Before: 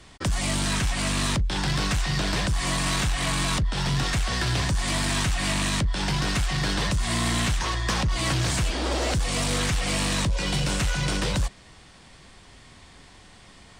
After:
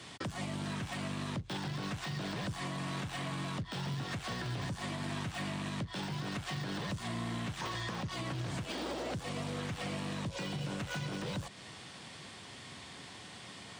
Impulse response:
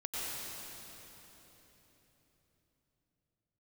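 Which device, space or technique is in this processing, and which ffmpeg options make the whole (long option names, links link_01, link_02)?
broadcast voice chain: -af "highpass=frequency=100:width=0.5412,highpass=frequency=100:width=1.3066,deesser=0.95,acompressor=threshold=-35dB:ratio=5,equalizer=frequency=3300:width_type=o:width=0.77:gain=3,alimiter=level_in=6dB:limit=-24dB:level=0:latency=1:release=111,volume=-6dB,volume=1dB"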